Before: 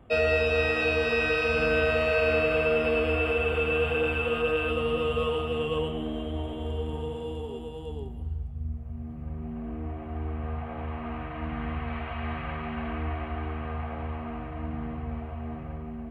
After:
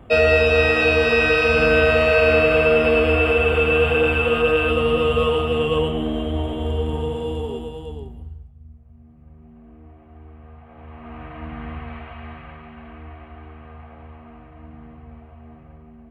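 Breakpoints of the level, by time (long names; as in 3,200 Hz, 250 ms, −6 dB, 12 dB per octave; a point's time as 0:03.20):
0:07.50 +8.5 dB
0:08.19 0 dB
0:08.56 −10.5 dB
0:10.62 −10.5 dB
0:11.26 0 dB
0:11.77 0 dB
0:12.73 −7.5 dB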